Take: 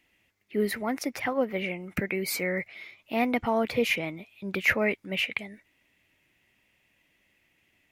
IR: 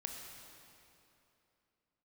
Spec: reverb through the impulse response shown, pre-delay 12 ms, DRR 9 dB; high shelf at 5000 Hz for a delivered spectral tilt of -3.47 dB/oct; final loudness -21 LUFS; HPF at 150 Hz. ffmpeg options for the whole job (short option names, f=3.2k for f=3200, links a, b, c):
-filter_complex "[0:a]highpass=150,highshelf=f=5k:g=7.5,asplit=2[a][b];[1:a]atrim=start_sample=2205,adelay=12[c];[b][c]afir=irnorm=-1:irlink=0,volume=-7.5dB[d];[a][d]amix=inputs=2:normalize=0,volume=6.5dB"